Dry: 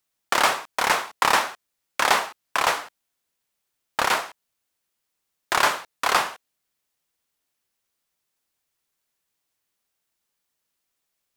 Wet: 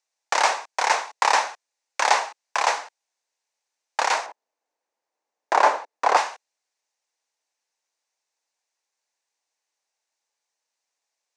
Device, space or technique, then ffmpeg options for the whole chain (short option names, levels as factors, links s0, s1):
phone speaker on a table: -filter_complex "[0:a]highpass=f=360:w=0.5412,highpass=f=360:w=1.3066,equalizer=f=370:t=q:w=4:g=-7,equalizer=f=850:t=q:w=4:g=5,equalizer=f=1300:t=q:w=4:g=-6,equalizer=f=3200:t=q:w=4:g=-6,equalizer=f=6100:t=q:w=4:g=4,lowpass=f=7800:w=0.5412,lowpass=f=7800:w=1.3066,asettb=1/sr,asplit=3[s0][s1][s2];[s0]atrim=end=4.264[s3];[s1]atrim=start=4.26:end=6.17,asetpts=PTS-STARTPTS,afade=t=in:d=0.004:c=qsin,afade=t=out:st=1.906:d=0.004:c=qsin,tiltshelf=f=1500:g=9.5[s4];[s2]atrim=start=6.166[s5];[s3][s4]acrossfade=d=0.004:c1=hsin:c2=qsin[s6];[s6][s5]acrossfade=d=0.004:c1=qsin:c2=hsin"